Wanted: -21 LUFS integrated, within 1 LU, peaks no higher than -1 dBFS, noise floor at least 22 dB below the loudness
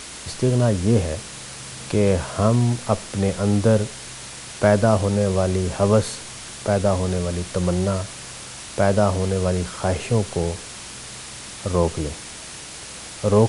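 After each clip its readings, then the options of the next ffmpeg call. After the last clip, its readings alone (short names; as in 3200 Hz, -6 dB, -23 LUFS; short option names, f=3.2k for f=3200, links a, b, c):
hum 60 Hz; harmonics up to 240 Hz; hum level -40 dBFS; noise floor -37 dBFS; noise floor target -44 dBFS; loudness -21.5 LUFS; peak -2.0 dBFS; loudness target -21.0 LUFS
-> -af "bandreject=f=60:t=h:w=4,bandreject=f=120:t=h:w=4,bandreject=f=180:t=h:w=4,bandreject=f=240:t=h:w=4"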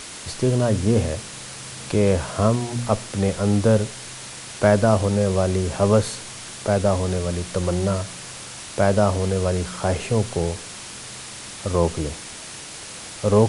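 hum none; noise floor -37 dBFS; noise floor target -44 dBFS
-> -af "afftdn=nr=7:nf=-37"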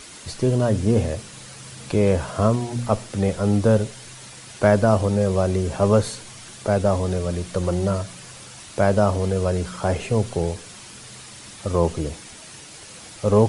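noise floor -42 dBFS; noise floor target -44 dBFS
-> -af "afftdn=nr=6:nf=-42"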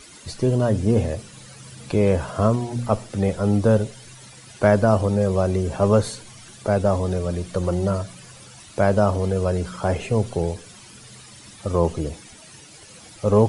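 noise floor -45 dBFS; loudness -22.0 LUFS; peak -2.5 dBFS; loudness target -21.0 LUFS
-> -af "volume=1dB"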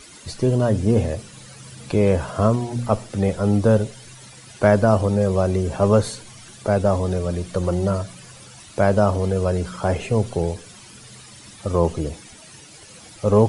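loudness -21.0 LUFS; peak -1.5 dBFS; noise floor -44 dBFS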